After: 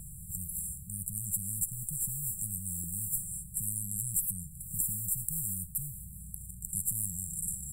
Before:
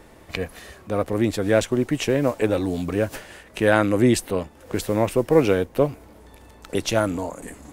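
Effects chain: brick-wall FIR band-stop 180–7300 Hz; 2.83–4.81 s: comb 6.5 ms, depth 36%; spectrum-flattening compressor 4:1; trim +4 dB

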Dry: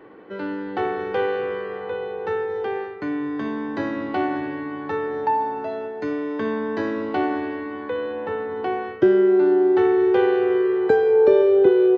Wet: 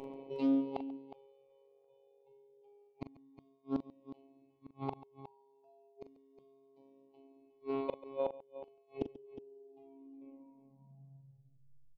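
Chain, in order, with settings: tape stop on the ending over 2.35 s; treble shelf 3 kHz -6.5 dB; reverse; upward compressor, threshold -22 dBFS; reverse; spectral noise reduction 13 dB; elliptic band-stop 1–2.3 kHz, stop band 40 dB; robot voice 136 Hz; inverted gate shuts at -26 dBFS, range -40 dB; on a send: multi-tap echo 41/138/362 ms -10/-18/-13.5 dB; on the sum: loudspeaker Doppler distortion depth 0.2 ms; trim +5 dB

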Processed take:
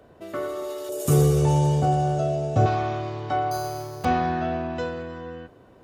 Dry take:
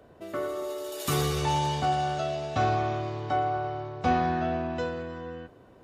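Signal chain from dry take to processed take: 0.89–2.66 s: graphic EQ 125/500/1000/2000/4000/8000 Hz +11/+9/-6/-7/-10/+5 dB; 3.51–4.05 s: careless resampling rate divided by 8×, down none, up hold; trim +2 dB

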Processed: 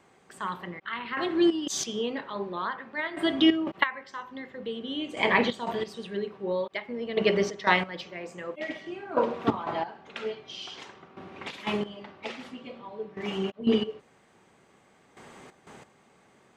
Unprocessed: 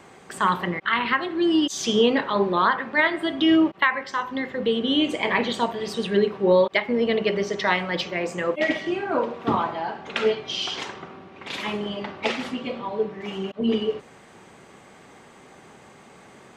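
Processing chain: trance gate ".......xx.x." 90 bpm -12 dB

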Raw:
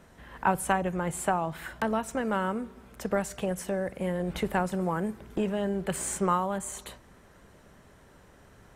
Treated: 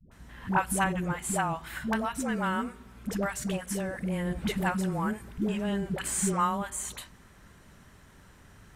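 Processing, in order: peaking EQ 530 Hz -9 dB 1.5 oct; phase dispersion highs, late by 116 ms, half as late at 410 Hz; trim +3 dB

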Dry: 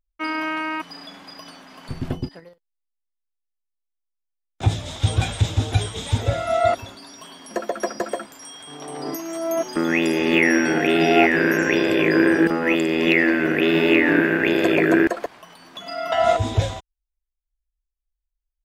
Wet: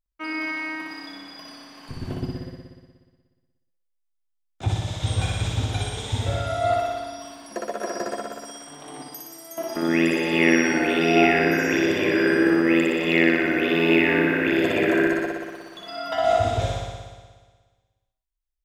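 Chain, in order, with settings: 9.02–9.58 s: pre-emphasis filter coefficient 0.8; on a send: flutter echo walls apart 10.3 m, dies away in 1.5 s; on the sum: trim -6 dB

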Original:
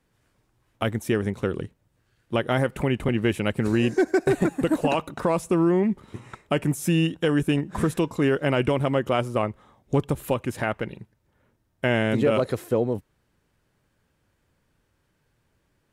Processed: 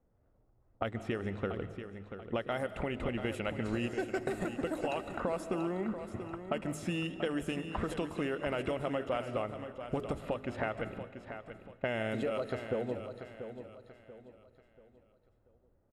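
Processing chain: de-hum 51.93 Hz, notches 8; level-controlled noise filter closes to 650 Hz, open at -18 dBFS; peaking EQ 140 Hz -10 dB 0.6 oct; band-stop 6 kHz, Q 17; comb 1.5 ms, depth 31%; compression 6:1, threshold -32 dBFS, peak gain reduction 14.5 dB; feedback delay 686 ms, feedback 37%, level -10 dB; reverberation RT60 1.3 s, pre-delay 105 ms, DRR 13 dB

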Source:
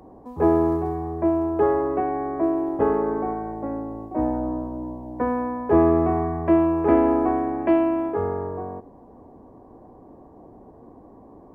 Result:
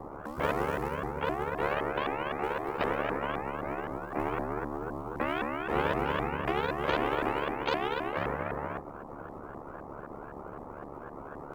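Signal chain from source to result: sawtooth pitch modulation +7.5 st, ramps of 258 ms; ring modulator 36 Hz; spectrum-flattening compressor 2:1; trim -6.5 dB

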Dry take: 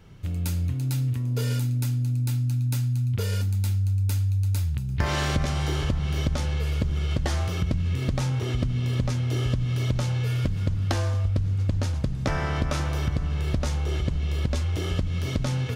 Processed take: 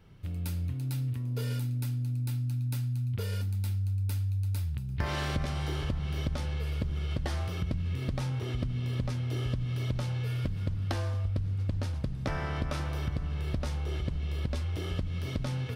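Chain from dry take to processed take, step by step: peaking EQ 6.8 kHz -7 dB 0.45 oct; trim -6.5 dB

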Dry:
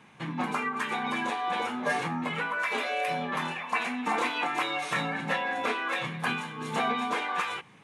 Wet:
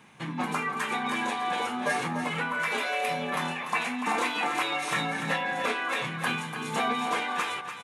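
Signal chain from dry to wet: treble shelf 6.8 kHz +8.5 dB; on a send: delay 292 ms -9 dB

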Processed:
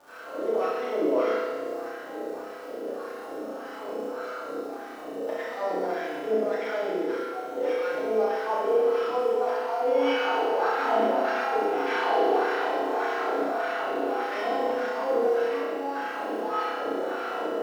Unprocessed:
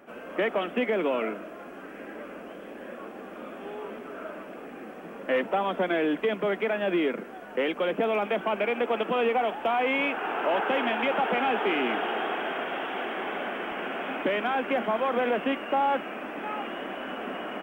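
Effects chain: sorted samples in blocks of 8 samples; treble shelf 6.7 kHz -11 dB; compressor with a negative ratio -28 dBFS, ratio -0.5; wah-wah 1.7 Hz 400–1700 Hz, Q 2.1; crackle 210 per s -48 dBFS; on a send: flutter echo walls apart 5.5 m, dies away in 0.68 s; on the sum: FDN reverb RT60 1.7 s, low-frequency decay 0.9×, high-frequency decay 1×, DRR -5 dB

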